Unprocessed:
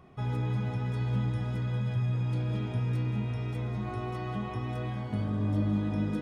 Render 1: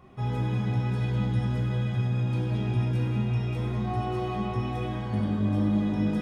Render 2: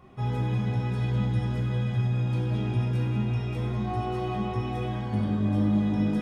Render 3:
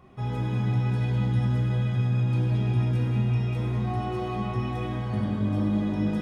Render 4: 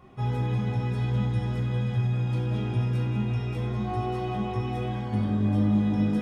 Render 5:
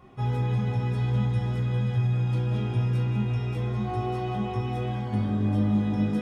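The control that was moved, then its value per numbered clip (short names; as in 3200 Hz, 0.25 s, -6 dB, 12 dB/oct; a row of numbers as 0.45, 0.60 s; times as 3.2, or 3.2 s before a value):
non-linear reverb, gate: 330, 220, 510, 130, 90 ms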